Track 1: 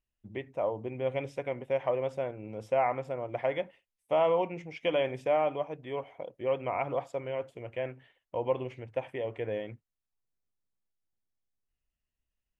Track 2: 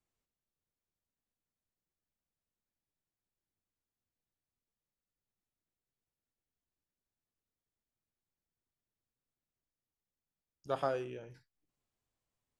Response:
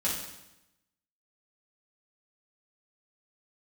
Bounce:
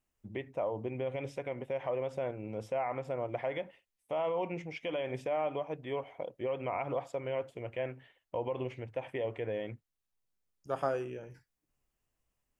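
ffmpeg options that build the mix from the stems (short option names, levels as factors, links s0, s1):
-filter_complex "[0:a]alimiter=level_in=1.26:limit=0.0631:level=0:latency=1:release=92,volume=0.794,volume=1.12,asplit=2[s0][s1];[1:a]equalizer=f=3900:w=3.2:g=-15,volume=1.41[s2];[s1]apad=whole_len=555254[s3];[s2][s3]sidechaincompress=threshold=0.00251:ratio=8:attack=35:release=971[s4];[s0][s4]amix=inputs=2:normalize=0"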